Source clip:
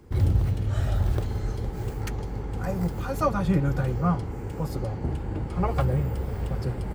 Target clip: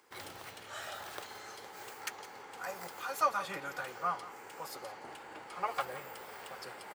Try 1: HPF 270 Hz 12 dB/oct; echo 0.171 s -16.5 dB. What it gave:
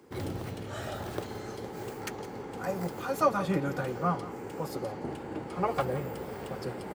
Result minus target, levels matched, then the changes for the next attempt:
250 Hz band +13.5 dB
change: HPF 1000 Hz 12 dB/oct

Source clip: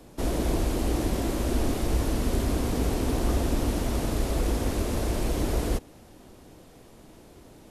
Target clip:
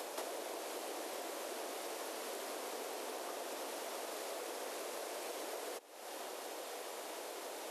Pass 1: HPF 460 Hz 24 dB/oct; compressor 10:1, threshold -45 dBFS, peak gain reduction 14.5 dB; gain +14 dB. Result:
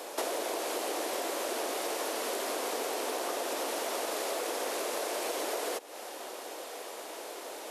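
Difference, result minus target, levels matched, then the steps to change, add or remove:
compressor: peak gain reduction -10 dB
change: compressor 10:1, threshold -56 dBFS, peak gain reduction 24.5 dB

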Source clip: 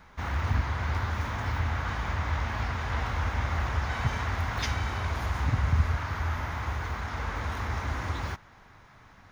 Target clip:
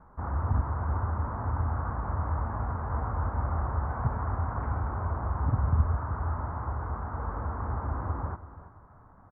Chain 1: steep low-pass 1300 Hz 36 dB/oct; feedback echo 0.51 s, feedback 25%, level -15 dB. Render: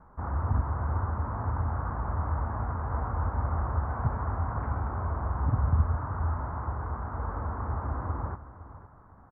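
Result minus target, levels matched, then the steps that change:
echo 0.178 s late
change: feedback echo 0.332 s, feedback 25%, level -15 dB

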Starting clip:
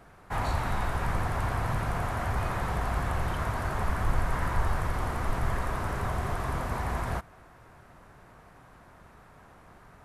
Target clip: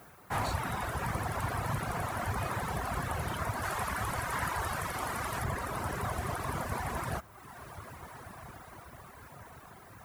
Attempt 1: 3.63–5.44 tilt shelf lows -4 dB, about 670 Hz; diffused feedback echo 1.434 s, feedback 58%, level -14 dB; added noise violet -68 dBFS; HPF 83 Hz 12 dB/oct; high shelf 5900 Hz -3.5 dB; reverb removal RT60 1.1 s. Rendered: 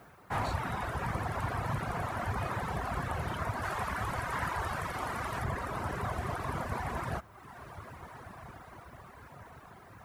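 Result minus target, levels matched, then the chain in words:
8000 Hz band -6.5 dB
3.63–5.44 tilt shelf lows -4 dB, about 670 Hz; diffused feedback echo 1.434 s, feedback 58%, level -14 dB; added noise violet -68 dBFS; HPF 83 Hz 12 dB/oct; high shelf 5900 Hz +7 dB; reverb removal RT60 1.1 s

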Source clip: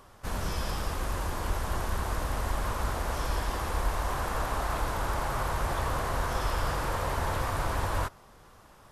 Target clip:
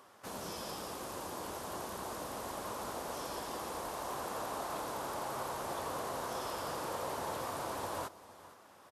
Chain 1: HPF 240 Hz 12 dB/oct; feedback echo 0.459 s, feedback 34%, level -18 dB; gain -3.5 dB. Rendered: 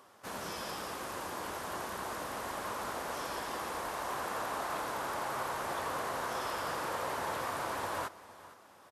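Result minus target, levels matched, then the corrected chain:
2000 Hz band +4.5 dB
HPF 240 Hz 12 dB/oct; dynamic EQ 1800 Hz, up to -8 dB, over -50 dBFS, Q 0.95; feedback echo 0.459 s, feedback 34%, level -18 dB; gain -3.5 dB

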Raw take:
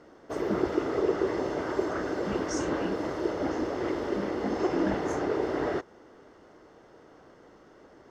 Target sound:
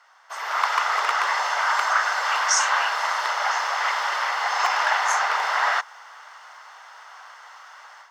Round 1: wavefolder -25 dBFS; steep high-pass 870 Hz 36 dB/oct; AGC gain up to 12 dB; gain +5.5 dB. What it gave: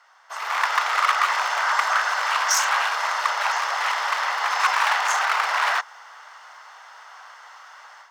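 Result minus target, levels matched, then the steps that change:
wavefolder: distortion +14 dB
change: wavefolder -18 dBFS

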